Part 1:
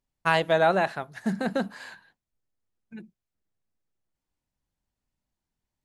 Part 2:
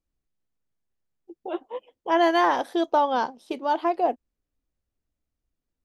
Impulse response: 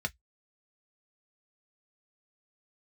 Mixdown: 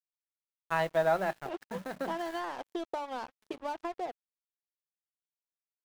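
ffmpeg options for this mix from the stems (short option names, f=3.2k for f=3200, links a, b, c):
-filter_complex "[0:a]acrusher=bits=6:mix=0:aa=0.000001,adelay=450,volume=-9dB,asplit=2[a][b];[b]volume=-10dB[c];[1:a]acompressor=threshold=-26dB:ratio=16,volume=-4.5dB[d];[2:a]atrim=start_sample=2205[e];[c][e]afir=irnorm=-1:irlink=0[f];[a][d][f]amix=inputs=3:normalize=0,bandreject=f=60:t=h:w=6,bandreject=f=120:t=h:w=6,bandreject=f=180:t=h:w=6,bandreject=f=240:t=h:w=6,bandreject=f=300:t=h:w=6,adynamicequalizer=threshold=0.00355:dfrequency=5000:dqfactor=0.9:tfrequency=5000:tqfactor=0.9:attack=5:release=100:ratio=0.375:range=2:mode=cutabove:tftype=bell,aeval=exprs='sgn(val(0))*max(abs(val(0))-0.00631,0)':c=same"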